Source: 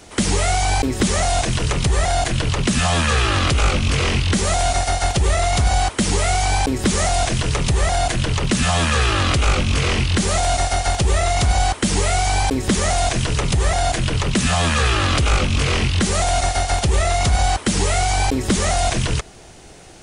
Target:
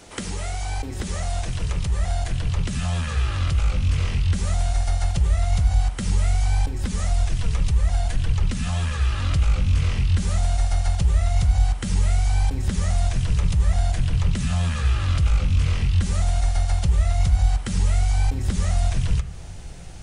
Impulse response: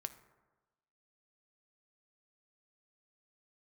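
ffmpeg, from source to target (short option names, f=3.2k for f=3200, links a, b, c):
-filter_complex "[0:a]asplit=3[a][b][c];[a]afade=t=out:st=6.68:d=0.02[d];[b]flanger=delay=1.7:depth=3.1:regen=42:speed=1.8:shape=triangular,afade=t=in:st=6.68:d=0.02,afade=t=out:st=9.33:d=0.02[e];[c]afade=t=in:st=9.33:d=0.02[f];[d][e][f]amix=inputs=3:normalize=0,acompressor=threshold=-26dB:ratio=6,asubboost=boost=6:cutoff=130[g];[1:a]atrim=start_sample=2205,asetrate=57330,aresample=44100[h];[g][h]afir=irnorm=-1:irlink=0,volume=2.5dB"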